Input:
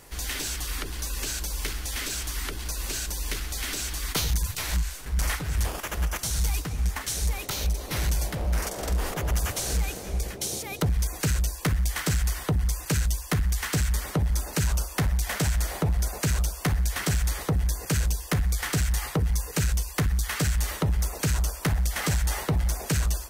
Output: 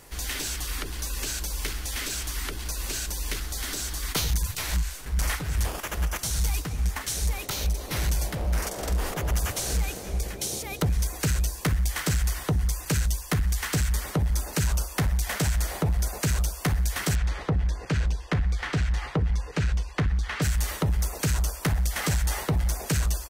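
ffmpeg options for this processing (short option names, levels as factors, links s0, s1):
-filter_complex "[0:a]asettb=1/sr,asplit=3[s0][s1][s2];[s0]atrim=end=3.404[s3];[s1]atrim=start=3.4:end=4.03,asetpts=PTS-STARTPTS,afade=t=in:d=0.004:c=qsin,afade=t=out:st=0.626:d=0.004:c=qsin,equalizer=f=2500:t=o:w=0.58:g=-5.5[s4];[s2]atrim=start=4.026[s5];[s3][s4]acrossfade=d=0.004:c1=hsin:c2=qsin[s6];[s6][s5]acrossfade=d=0.004:c1=qsin:c2=hsin,asplit=2[s7][s8];[s8]afade=t=in:st=9.79:d=0.01,afade=t=out:st=10.61:d=0.01,aecho=0:1:510|1020|1530|2040|2550|3060|3570|4080|4590|5100|5610|6120:0.141254|0.113003|0.0904024|0.0723219|0.0578575|0.046286|0.0370288|0.0296231|0.0236984|0.0189588|0.015167|0.0121336[s9];[s7][s9]amix=inputs=2:normalize=0,asettb=1/sr,asplit=3[s10][s11][s12];[s10]atrim=end=17.154[s13];[s11]atrim=start=17.15:end=20.42,asetpts=PTS-STARTPTS,afade=t=in:d=0.004:c=qsin,afade=t=out:st=3.266:d=0.004:c=qsin,lowpass=3500[s14];[s12]atrim=start=20.416[s15];[s13][s14]acrossfade=d=0.004:c1=hsin:c2=qsin[s16];[s16][s15]acrossfade=d=0.004:c1=qsin:c2=hsin"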